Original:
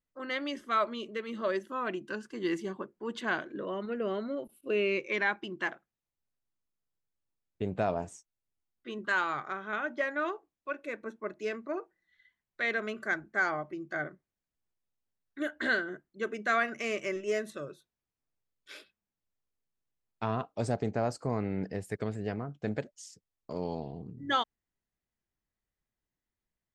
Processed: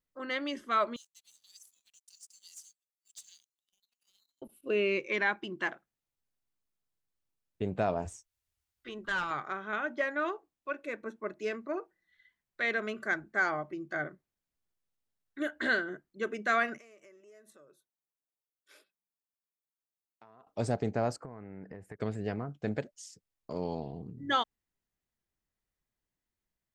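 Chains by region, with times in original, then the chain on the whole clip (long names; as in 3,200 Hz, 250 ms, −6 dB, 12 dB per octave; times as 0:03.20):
0:00.96–0:04.42: inverse Chebyshev high-pass filter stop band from 1,500 Hz, stop band 70 dB + leveller curve on the samples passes 3
0:08.05–0:09.31: low shelf with overshoot 120 Hz +11.5 dB, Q 1.5 + tube saturation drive 23 dB, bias 0.55 + one half of a high-frequency compander encoder only
0:16.78–0:20.47: parametric band 3,100 Hz −14.5 dB 2.5 octaves + downward compressor 5 to 1, threshold −47 dBFS + high-pass filter 1,100 Hz 6 dB per octave
0:21.16–0:22.00: high shelf with overshoot 2,600 Hz −13 dB, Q 1.5 + downward compressor 16 to 1, threshold −40 dBFS
whole clip: no processing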